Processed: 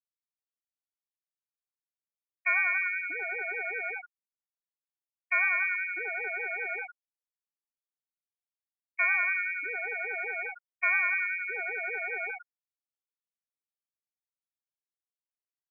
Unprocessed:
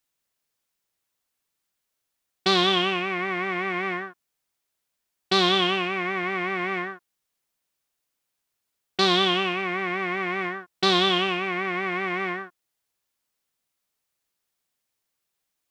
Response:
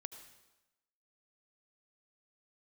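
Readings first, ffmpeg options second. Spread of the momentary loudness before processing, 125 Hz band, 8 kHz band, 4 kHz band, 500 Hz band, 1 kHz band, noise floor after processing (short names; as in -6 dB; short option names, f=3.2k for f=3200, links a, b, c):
11 LU, under -40 dB, under -35 dB, under -40 dB, -15.5 dB, -12.0 dB, under -85 dBFS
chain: -af "equalizer=f=140:t=o:w=0.44:g=13,lowpass=f=2.2k:t=q:w=0.5098,lowpass=f=2.2k:t=q:w=0.6013,lowpass=f=2.2k:t=q:w=0.9,lowpass=f=2.2k:t=q:w=2.563,afreqshift=-2600,afftfilt=real='re*gte(hypot(re,im),0.158)':imag='im*gte(hypot(re,im),0.158)':win_size=1024:overlap=0.75,volume=-4dB"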